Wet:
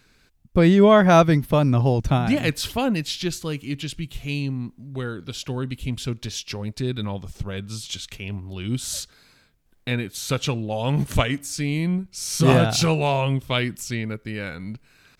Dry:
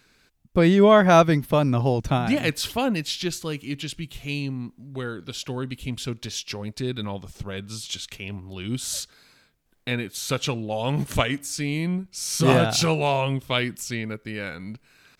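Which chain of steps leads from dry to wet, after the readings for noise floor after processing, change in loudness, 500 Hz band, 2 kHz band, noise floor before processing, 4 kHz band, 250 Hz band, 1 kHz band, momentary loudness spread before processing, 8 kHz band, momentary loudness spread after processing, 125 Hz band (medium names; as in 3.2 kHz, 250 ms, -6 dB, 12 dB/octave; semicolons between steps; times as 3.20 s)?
-60 dBFS, +1.5 dB, +0.5 dB, 0.0 dB, -62 dBFS, 0.0 dB, +2.0 dB, 0.0 dB, 16 LU, 0.0 dB, 16 LU, +3.5 dB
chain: bass shelf 140 Hz +7.5 dB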